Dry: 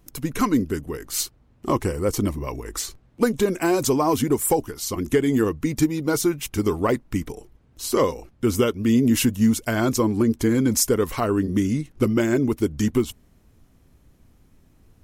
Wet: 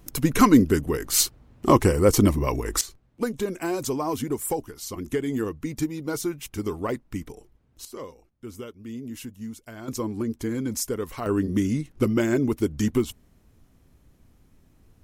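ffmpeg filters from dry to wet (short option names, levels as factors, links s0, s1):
-af "asetnsamples=n=441:p=0,asendcmd='2.81 volume volume -7dB;7.85 volume volume -18dB;9.88 volume volume -8.5dB;11.26 volume volume -2dB',volume=1.78"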